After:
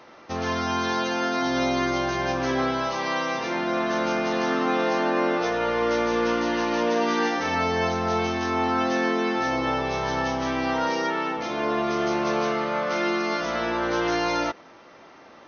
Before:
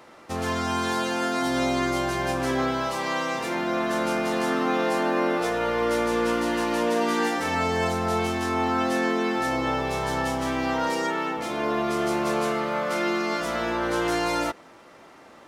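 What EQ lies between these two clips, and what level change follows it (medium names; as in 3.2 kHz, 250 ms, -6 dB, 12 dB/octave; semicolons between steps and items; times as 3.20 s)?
brick-wall FIR low-pass 6.5 kHz; bass shelf 170 Hz -3 dB; +1.0 dB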